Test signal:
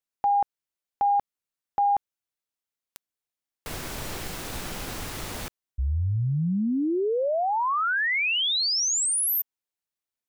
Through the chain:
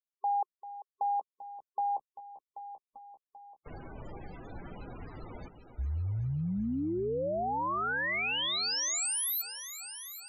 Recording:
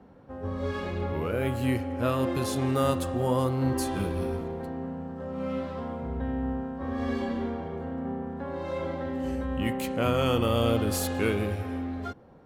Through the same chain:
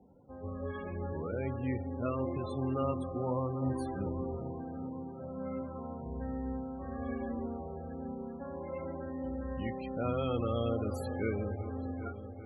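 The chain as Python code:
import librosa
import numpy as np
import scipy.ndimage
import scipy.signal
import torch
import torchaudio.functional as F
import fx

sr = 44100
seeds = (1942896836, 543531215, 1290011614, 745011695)

y = fx.echo_heads(x, sr, ms=392, heads='first and second', feedback_pct=56, wet_db=-14.5)
y = fx.spec_topn(y, sr, count=32)
y = y * librosa.db_to_amplitude(-7.5)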